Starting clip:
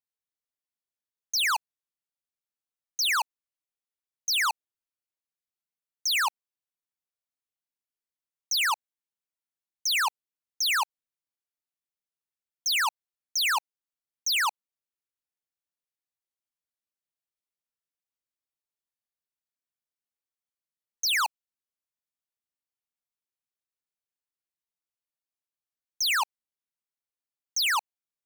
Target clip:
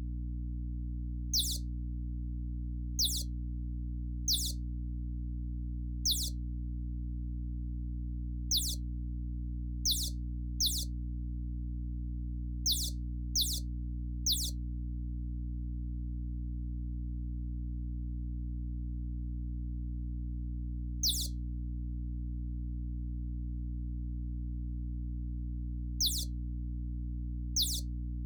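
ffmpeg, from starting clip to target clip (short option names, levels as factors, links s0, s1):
-filter_complex "[0:a]afftfilt=real='re*(1-between(b*sr/4096,610,3400))':imag='im*(1-between(b*sr/4096,610,3400))':win_size=4096:overlap=0.75,flanger=delay=5.8:depth=4.7:regen=-71:speed=0.35:shape=triangular,aeval=exprs='1.41*(cos(1*acos(clip(val(0)/1.41,-1,1)))-cos(1*PI/2))+0.0562*(cos(6*acos(clip(val(0)/1.41,-1,1)))-cos(6*PI/2))':c=same,asplit=2[s0][s1];[s1]asoftclip=type=tanh:threshold=0.0178,volume=0.299[s2];[s0][s2]amix=inputs=2:normalize=0,aeval=exprs='val(0)+0.0398*(sin(2*PI*60*n/s)+sin(2*PI*2*60*n/s)/2+sin(2*PI*3*60*n/s)/3+sin(2*PI*4*60*n/s)/4+sin(2*PI*5*60*n/s)/5)':c=same,acompressor=mode=upward:threshold=0.0316:ratio=2.5,highpass=f=61:p=1,equalizer=f=200:t=o:w=2.7:g=-10.5"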